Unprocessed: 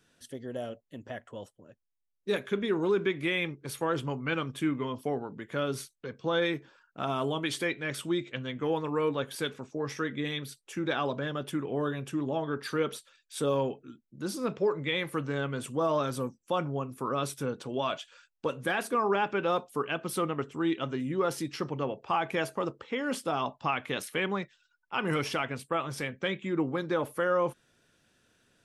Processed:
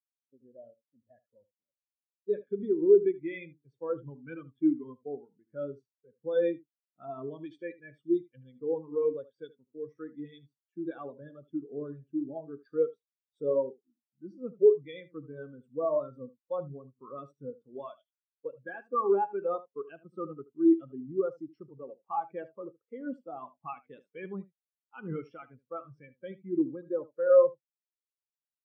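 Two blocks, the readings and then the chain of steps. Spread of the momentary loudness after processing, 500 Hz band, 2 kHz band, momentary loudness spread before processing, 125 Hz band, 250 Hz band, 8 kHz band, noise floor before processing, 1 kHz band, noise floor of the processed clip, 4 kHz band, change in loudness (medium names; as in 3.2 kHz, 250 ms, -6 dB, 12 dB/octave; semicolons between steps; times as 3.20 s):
21 LU, +2.0 dB, -16.0 dB, 10 LU, -12.0 dB, -1.0 dB, under -35 dB, -77 dBFS, -7.0 dB, under -85 dBFS, under -20 dB, +1.0 dB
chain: steep low-pass 8.4 kHz; on a send: delay 76 ms -8 dB; on the sum: spectral contrast expander 2.5:1; trim +4 dB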